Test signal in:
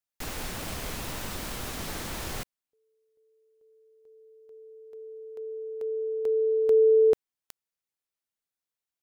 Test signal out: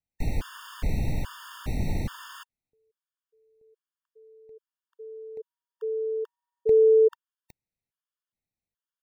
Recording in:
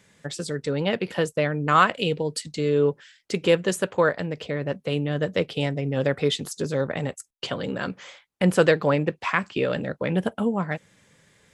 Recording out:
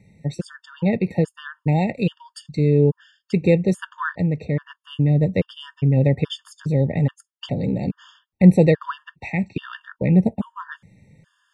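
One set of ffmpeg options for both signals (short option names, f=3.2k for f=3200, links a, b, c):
-af "bass=f=250:g=14,treble=f=4k:g=-8,afftfilt=real='re*gt(sin(2*PI*1.2*pts/sr)*(1-2*mod(floor(b*sr/1024/910),2)),0)':imag='im*gt(sin(2*PI*1.2*pts/sr)*(1-2*mod(floor(b*sr/1024/910),2)),0)':win_size=1024:overlap=0.75"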